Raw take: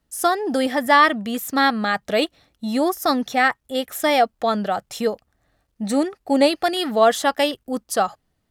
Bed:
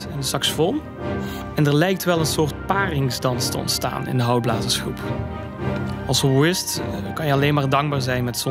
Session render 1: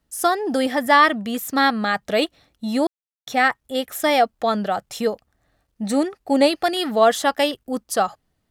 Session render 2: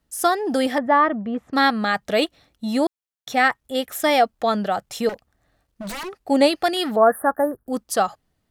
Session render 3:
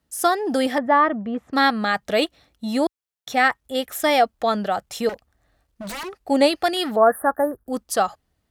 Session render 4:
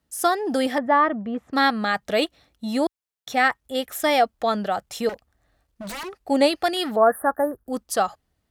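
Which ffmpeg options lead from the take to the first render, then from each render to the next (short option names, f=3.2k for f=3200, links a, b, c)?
-filter_complex "[0:a]asplit=3[a][b][c];[a]atrim=end=2.87,asetpts=PTS-STARTPTS,afade=t=out:st=2.866:d=0.004:c=hsin[d];[b]atrim=start=2.87:end=3.27,asetpts=PTS-STARTPTS,volume=0[e];[c]atrim=start=3.27,asetpts=PTS-STARTPTS,afade=t=in:d=0.004:c=hsin[f];[d][e][f]concat=n=3:v=0:a=1"
-filter_complex "[0:a]asettb=1/sr,asplit=3[a][b][c];[a]atrim=end=0.784[d];[b]atrim=start=0.78:end=1.53,asetpts=PTS-STARTPTS,afade=t=in:d=0.004:c=qsin,afade=t=out:st=0.746:d=0.004:c=qsin,lowpass=1.2k[e];[c]atrim=start=1.526[f];[d][e]acrossfade=d=0.004:c1=hsin:c2=qsin[g];[g][f]acrossfade=d=0.004:c1=qsin:c2=hsin,asettb=1/sr,asplit=3[h][i][j];[h]atrim=end=5.094[k];[i]atrim=start=5.09:end=6.18,asetpts=PTS-STARTPTS,afade=t=in:d=0.004:c=qsin,afade=t=out:st=1.086:d=0.004:c=qsin,aeval=exprs='0.0501*(abs(mod(val(0)/0.0501+3,4)-2)-1)':c=same[l];[j]atrim=start=6.176[m];[k][l]acrossfade=d=0.004:c1=hsin:c2=qsin[n];[n][m]acrossfade=d=0.004:c1=qsin:c2=hsin,asettb=1/sr,asplit=3[o][p][q];[o]atrim=end=6.964[r];[p]atrim=start=6.96:end=7.67,asetpts=PTS-STARTPTS,afade=t=in:d=0.004:c=qsin,afade=t=out:st=0.706:d=0.004:c=qsin,asuperstop=centerf=4300:order=20:qfactor=0.55[s];[q]atrim=start=7.666[t];[r][s]acrossfade=d=0.004:c1=hsin:c2=qsin[u];[u][t]acrossfade=d=0.004:c1=qsin:c2=hsin"
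-af "highpass=50,asubboost=boost=3:cutoff=70"
-af "volume=-1.5dB"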